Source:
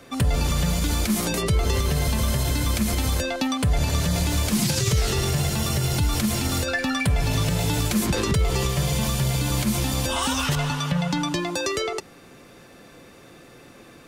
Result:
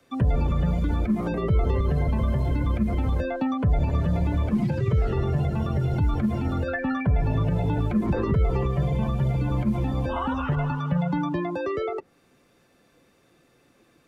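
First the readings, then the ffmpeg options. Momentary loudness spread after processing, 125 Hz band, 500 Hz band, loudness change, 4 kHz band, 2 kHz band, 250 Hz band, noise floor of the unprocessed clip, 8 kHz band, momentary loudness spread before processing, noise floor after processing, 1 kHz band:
3 LU, 0.0 dB, -0.5 dB, -2.0 dB, -19.0 dB, -7.5 dB, 0.0 dB, -48 dBFS, under -30 dB, 2 LU, -62 dBFS, -2.0 dB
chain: -filter_complex "[0:a]acrossover=split=3200[s0][s1];[s1]acompressor=threshold=0.00891:ratio=4:attack=1:release=60[s2];[s0][s2]amix=inputs=2:normalize=0,afftdn=nr=14:nf=-30,acrossover=split=110|1800[s3][s4][s5];[s5]acompressor=threshold=0.00316:ratio=6[s6];[s3][s4][s6]amix=inputs=3:normalize=0"

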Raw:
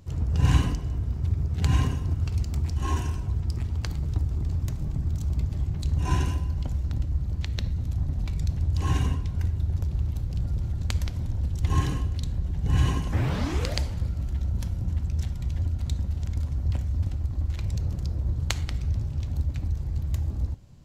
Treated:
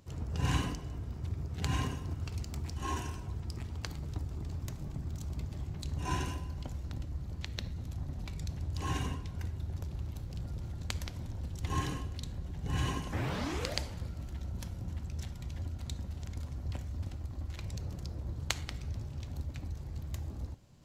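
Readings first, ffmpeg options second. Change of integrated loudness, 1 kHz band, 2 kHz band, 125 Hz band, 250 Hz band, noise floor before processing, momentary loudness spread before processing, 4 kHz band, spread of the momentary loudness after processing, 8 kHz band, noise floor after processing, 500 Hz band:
-10.5 dB, -4.0 dB, -3.5 dB, -11.5 dB, -7.5 dB, -33 dBFS, 5 LU, -3.5 dB, 7 LU, no reading, -44 dBFS, -4.5 dB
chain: -af "lowshelf=f=150:g=-11,areverse,acompressor=mode=upward:threshold=0.00224:ratio=2.5,areverse,volume=0.668"

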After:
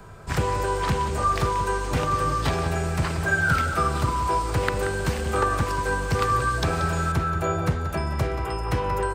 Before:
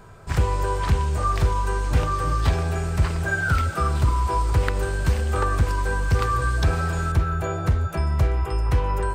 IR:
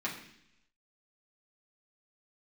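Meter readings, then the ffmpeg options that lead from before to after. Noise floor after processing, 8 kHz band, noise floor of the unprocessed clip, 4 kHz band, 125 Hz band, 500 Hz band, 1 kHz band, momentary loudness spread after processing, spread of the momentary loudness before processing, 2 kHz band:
-28 dBFS, +2.0 dB, -29 dBFS, +2.5 dB, -4.0 dB, +2.5 dB, +2.0 dB, 4 LU, 3 LU, +2.0 dB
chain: -filter_complex "[0:a]asplit=2[s0][s1];[s1]adelay=180.8,volume=0.316,highshelf=f=4000:g=-4.07[s2];[s0][s2]amix=inputs=2:normalize=0,acrossover=split=120|410|2600[s3][s4][s5][s6];[s3]acompressor=threshold=0.02:ratio=5[s7];[s7][s4][s5][s6]amix=inputs=4:normalize=0,volume=1.26"

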